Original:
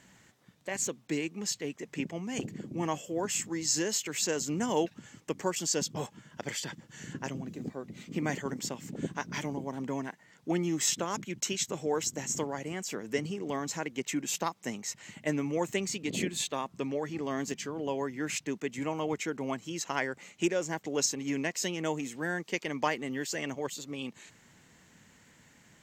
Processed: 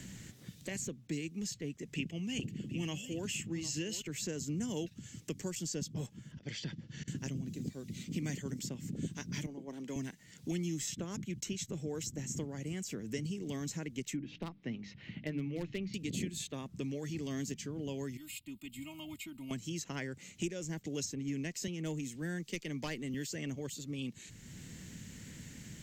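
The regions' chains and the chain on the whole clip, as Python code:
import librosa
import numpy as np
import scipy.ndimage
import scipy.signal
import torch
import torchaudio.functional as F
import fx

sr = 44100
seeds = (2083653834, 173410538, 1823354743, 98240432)

y = fx.chain(x, sr, fx.peak_eq(hz=2800.0, db=12.0, octaves=0.48),
    fx.echo_single(ms=753, db=-14.0), at=(1.94, 4.02))
y = fx.chain(y, sr, fx.lowpass(hz=5200.0, slope=24),
    fx.auto_swell(attack_ms=190.0), at=(6.32, 7.08))
y = fx.chain(y, sr, fx.highpass(hz=350.0, slope=12),
    fx.high_shelf(hz=4200.0, db=-9.5),
    fx.band_widen(depth_pct=100), at=(9.46, 9.96))
y = fx.chain(y, sr, fx.gaussian_blur(sigma=3.0),
    fx.hum_notches(base_hz=50, count=6),
    fx.clip_hard(threshold_db=-22.0), at=(14.16, 15.94))
y = fx.chain(y, sr, fx.pre_emphasis(coefficient=0.8),
    fx.fixed_phaser(hz=1700.0, stages=6),
    fx.comb(ms=3.2, depth=0.75), at=(18.17, 19.51))
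y = fx.chain(y, sr, fx.clip_hard(threshold_db=-20.5),
    fx.band_widen(depth_pct=40), at=(21.67, 23.14))
y = fx.tone_stack(y, sr, knobs='10-0-1')
y = fx.band_squash(y, sr, depth_pct=70)
y = y * 10.0 ** (15.0 / 20.0)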